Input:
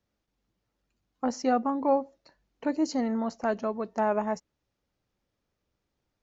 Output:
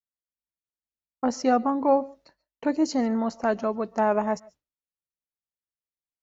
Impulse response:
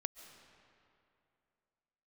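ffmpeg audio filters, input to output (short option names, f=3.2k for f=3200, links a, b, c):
-filter_complex "[0:a]agate=range=-33dB:threshold=-53dB:ratio=3:detection=peak,asplit=2[a][b];[1:a]atrim=start_sample=2205,afade=t=out:st=0.2:d=0.01,atrim=end_sample=9261[c];[b][c]afir=irnorm=-1:irlink=0,volume=3.5dB[d];[a][d]amix=inputs=2:normalize=0,volume=-3dB"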